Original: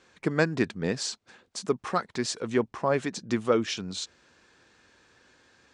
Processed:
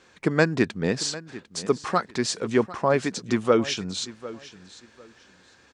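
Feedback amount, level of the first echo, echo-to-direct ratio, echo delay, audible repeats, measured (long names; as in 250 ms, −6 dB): 22%, −17.0 dB, −17.0 dB, 749 ms, 2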